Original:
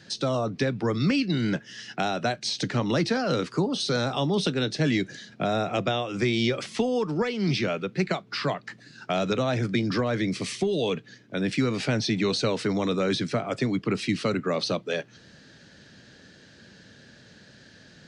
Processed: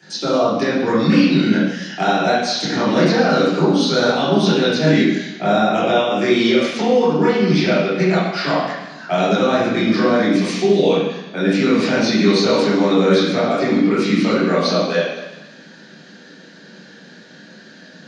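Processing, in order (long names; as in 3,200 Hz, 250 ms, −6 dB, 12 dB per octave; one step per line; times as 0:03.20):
Butterworth high-pass 180 Hz 36 dB per octave
high-shelf EQ 6,800 Hz +8 dB
convolution reverb RT60 1.1 s, pre-delay 6 ms, DRR −10 dB
level +3.5 dB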